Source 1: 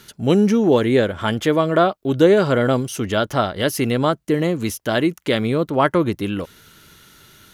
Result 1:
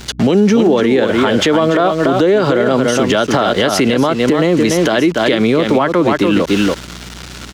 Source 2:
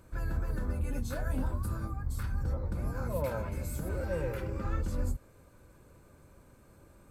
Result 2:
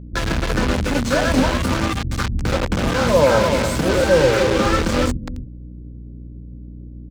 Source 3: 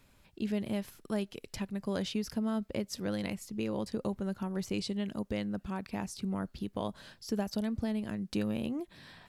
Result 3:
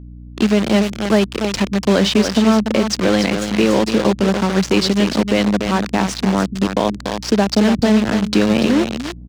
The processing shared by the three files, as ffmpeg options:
-filter_complex "[0:a]aecho=1:1:289:0.398,acrossover=split=300[a][b];[b]acrusher=bits=6:mix=0:aa=0.000001[c];[a][c]amix=inputs=2:normalize=0,acrossover=split=170 7300:gain=0.2 1 0.112[d][e][f];[d][e][f]amix=inputs=3:normalize=0,aeval=exprs='val(0)+0.00178*(sin(2*PI*60*n/s)+sin(2*PI*2*60*n/s)/2+sin(2*PI*3*60*n/s)/3+sin(2*PI*4*60*n/s)/4+sin(2*PI*5*60*n/s)/5)':c=same,acompressor=threshold=-25dB:ratio=6,alimiter=level_in=24dB:limit=-1dB:release=50:level=0:latency=1,volume=-3dB"

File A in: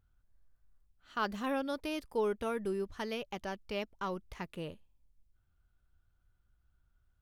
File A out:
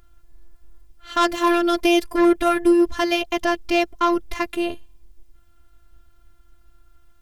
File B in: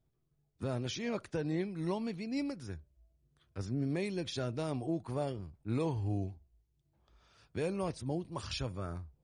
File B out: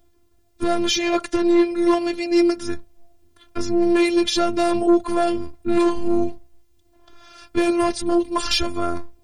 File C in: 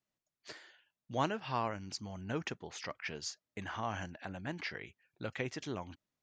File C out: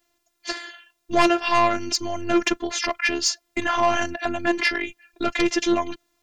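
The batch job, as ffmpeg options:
-af "aeval=exprs='0.133*sin(PI/2*2.82*val(0)/0.133)':c=same,acontrast=78,afftfilt=real='hypot(re,im)*cos(PI*b)':imag='0':win_size=512:overlap=0.75,volume=3.5dB"

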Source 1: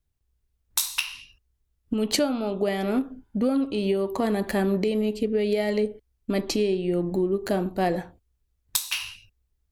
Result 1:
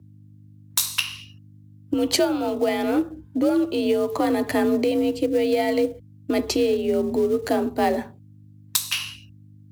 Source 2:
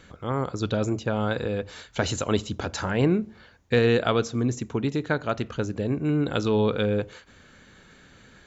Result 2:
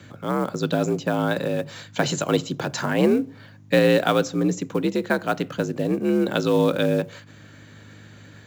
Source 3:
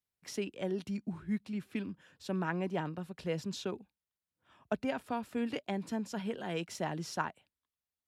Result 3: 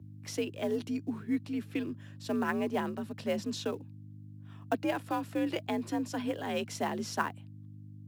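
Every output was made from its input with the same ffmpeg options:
-filter_complex "[0:a]acrossover=split=360|3400[a][b][c];[b]acrusher=bits=5:mode=log:mix=0:aa=0.000001[d];[a][d][c]amix=inputs=3:normalize=0,aeval=exprs='val(0)+0.00316*(sin(2*PI*50*n/s)+sin(2*PI*2*50*n/s)/2+sin(2*PI*3*50*n/s)/3+sin(2*PI*4*50*n/s)/4+sin(2*PI*5*50*n/s)/5)':c=same,afreqshift=55,volume=3dB"

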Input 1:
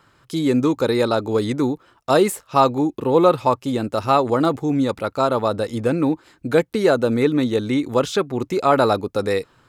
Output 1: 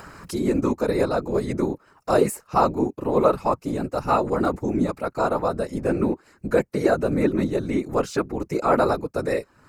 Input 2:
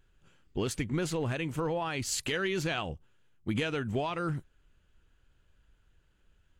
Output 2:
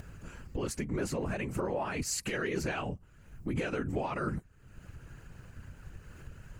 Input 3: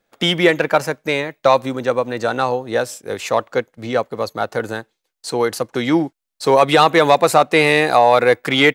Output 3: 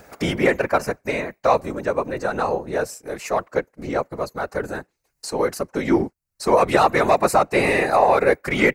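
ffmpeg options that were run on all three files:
-af "equalizer=f=3.4k:t=o:w=0.38:g=-14.5,acompressor=mode=upward:threshold=-24dB:ratio=2.5,afftfilt=real='hypot(re,im)*cos(2*PI*random(0))':imag='hypot(re,im)*sin(2*PI*random(1))':win_size=512:overlap=0.75,volume=2.5dB"

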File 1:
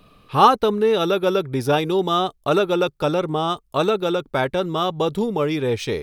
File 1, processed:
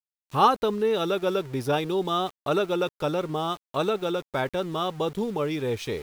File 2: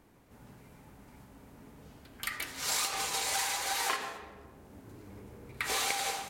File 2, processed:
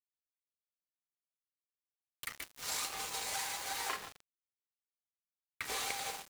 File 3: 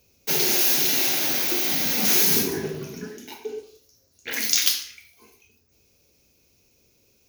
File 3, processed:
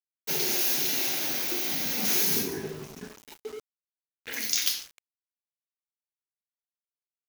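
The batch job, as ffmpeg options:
-af "aeval=exprs='val(0)*gte(abs(val(0)),0.0168)':c=same,volume=-6dB"

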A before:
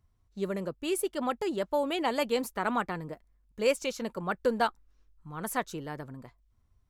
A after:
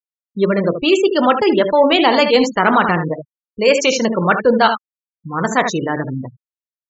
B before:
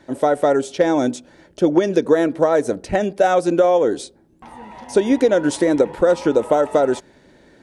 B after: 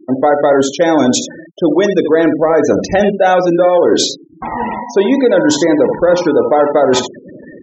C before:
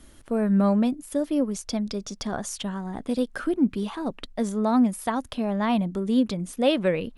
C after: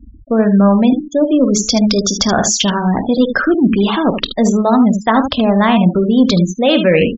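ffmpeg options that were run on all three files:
-filter_complex "[0:a]areverse,acompressor=threshold=-25dB:ratio=8,areverse,bandreject=f=71.74:t=h:w=4,bandreject=f=143.48:t=h:w=4,bandreject=f=215.22:t=h:w=4,bandreject=f=286.96:t=h:w=4,bandreject=f=358.7:t=h:w=4,bandreject=f=430.44:t=h:w=4,aresample=16000,aresample=44100,highpass=f=44:p=1,asplit=2[a][b];[b]asoftclip=type=tanh:threshold=-28dB,volume=-9dB[c];[a][c]amix=inputs=2:normalize=0,highshelf=f=2.3k:g=7,aecho=1:1:23|50|76:0.266|0.2|0.376,acontrast=47,highshelf=f=5.4k:g=-4.5,afftfilt=real='re*gte(hypot(re,im),0.0316)':imag='im*gte(hypot(re,im),0.0316)':win_size=1024:overlap=0.75,alimiter=level_in=10.5dB:limit=-1dB:release=50:level=0:latency=1,volume=-1dB"

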